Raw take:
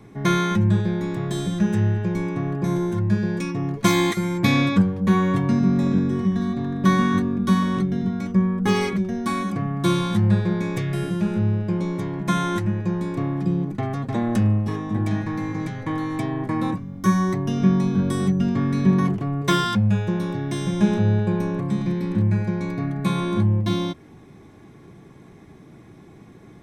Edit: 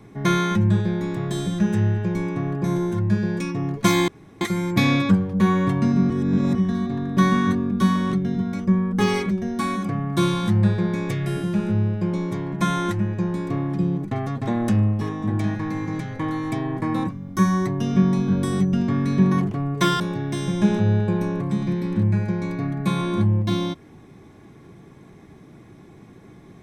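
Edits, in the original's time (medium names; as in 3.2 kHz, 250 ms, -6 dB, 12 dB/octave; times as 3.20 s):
4.08 s: insert room tone 0.33 s
5.77–6.22 s: reverse
19.67–20.19 s: delete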